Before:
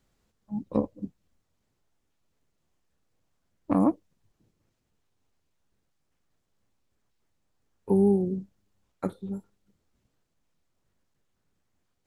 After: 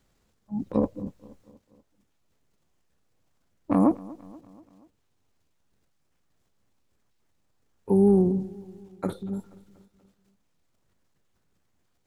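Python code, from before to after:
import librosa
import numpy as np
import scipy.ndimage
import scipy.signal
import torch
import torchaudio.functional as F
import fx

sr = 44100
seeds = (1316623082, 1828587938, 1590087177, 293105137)

y = fx.transient(x, sr, attack_db=-2, sustain_db=8)
y = fx.echo_feedback(y, sr, ms=240, feedback_pct=55, wet_db=-21.0)
y = y * 10.0 ** (2.5 / 20.0)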